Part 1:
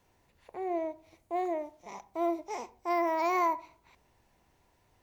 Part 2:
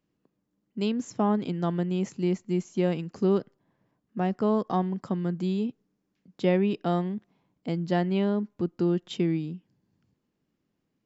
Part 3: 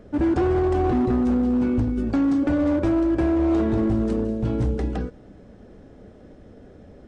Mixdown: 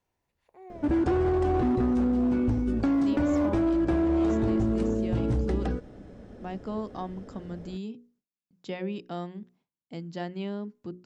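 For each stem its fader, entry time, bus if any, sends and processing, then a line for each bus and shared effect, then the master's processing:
−12.5 dB, 0.00 s, no send, no processing
−8.5 dB, 2.25 s, no send, mains-hum notches 60/120/180/240/300/360/420/480/540 Hz; noise gate with hold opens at −53 dBFS; high-shelf EQ 4,200 Hz +8 dB
0.0 dB, 0.70 s, no send, no processing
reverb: not used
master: downward compressor 2 to 1, threshold −25 dBFS, peak gain reduction 4.5 dB

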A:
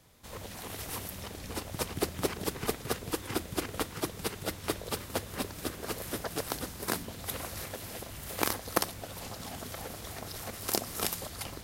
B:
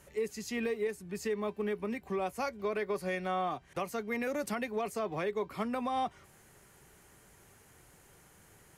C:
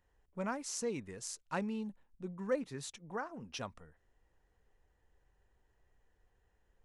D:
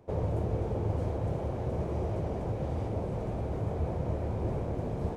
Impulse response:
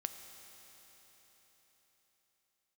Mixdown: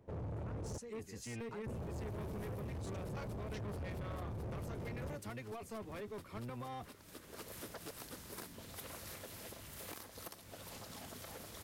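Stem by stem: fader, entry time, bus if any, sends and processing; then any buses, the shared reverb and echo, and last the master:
0:06.80 −18 dB → 0:07.53 −7 dB, 1.50 s, no send, downward compressor 6 to 1, threshold −34 dBFS, peak gain reduction 13.5 dB
−9.5 dB, 0.75 s, no send, sub-octave generator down 1 octave, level +4 dB
−5.5 dB, 0.00 s, no send, downward compressor, threshold −41 dBFS, peak gain reduction 13 dB
−8.0 dB, 0.00 s, muted 0:00.78–0:01.66, no send, bass and treble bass +6 dB, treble −1 dB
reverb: not used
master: low-shelf EQ 81 Hz −6 dB; notch filter 750 Hz, Q 12; soft clipping −39.5 dBFS, distortion −8 dB

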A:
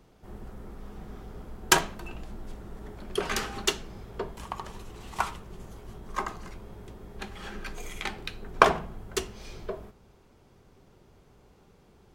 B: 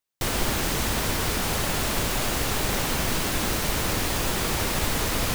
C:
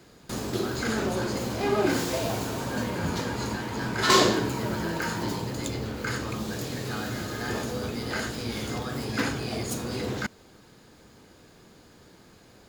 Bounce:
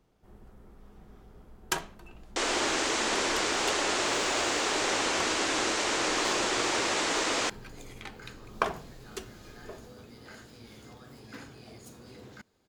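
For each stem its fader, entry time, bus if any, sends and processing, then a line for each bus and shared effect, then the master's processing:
−10.0 dB, 0.00 s, no send, no processing
+0.5 dB, 2.15 s, no send, elliptic band-pass filter 310–7,400 Hz, stop band 40 dB
−18.0 dB, 2.15 s, no send, no processing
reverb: not used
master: no processing

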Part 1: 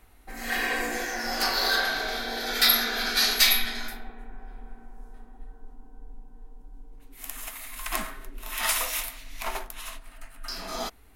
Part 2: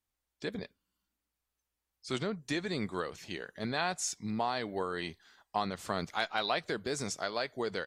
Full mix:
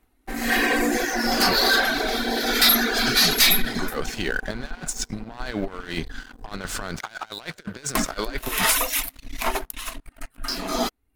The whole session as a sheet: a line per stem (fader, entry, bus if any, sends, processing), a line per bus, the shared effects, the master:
−3.5 dB, 0.00 s, muted 0:06.99–0:07.95, no send, reverb reduction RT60 0.75 s; parametric band 280 Hz +9 dB 1 octave
−1.0 dB, 0.90 s, no send, parametric band 1,500 Hz +12 dB 0.2 octaves; brickwall limiter −21.5 dBFS, peak gain reduction 7 dB; compressor whose output falls as the input rises −40 dBFS, ratio −0.5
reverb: not used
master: leveller curve on the samples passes 3

